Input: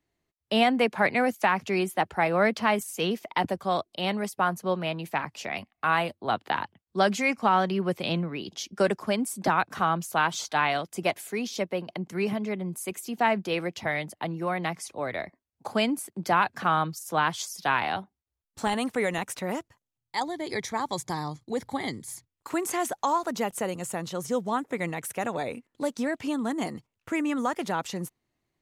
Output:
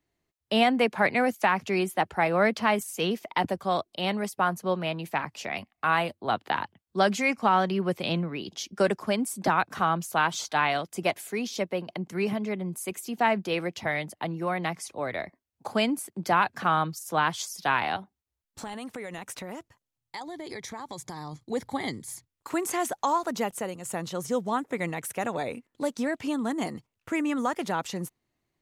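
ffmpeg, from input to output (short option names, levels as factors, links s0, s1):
-filter_complex "[0:a]asettb=1/sr,asplit=3[s0][s1][s2];[s0]atrim=end=17.964[s3];[s1]atrim=start=17.96:end=21.33,asetpts=PTS-STARTPTS,afade=t=in:d=0.004:c=qsin,afade=t=out:st=3.366:d=0.004:c=qsin,acompressor=threshold=0.02:ratio=6:attack=3.2:release=140:knee=1:detection=peak[s4];[s2]atrim=start=21.326[s5];[s3][s4]acrossfade=d=0.004:c1=hsin:c2=qsin[s6];[s6][s5]acrossfade=d=0.004:c1=qsin:c2=hsin,asplit=2[s7][s8];[s7]atrim=end=23.85,asetpts=PTS-STARTPTS,afade=t=out:st=23.42:d=0.43:silence=0.446684[s9];[s8]atrim=start=23.85,asetpts=PTS-STARTPTS,afade=t=in:d=0.004:c=hsin:silence=0.446684[s10];[s9][s10]concat=n=2:v=0:a=1"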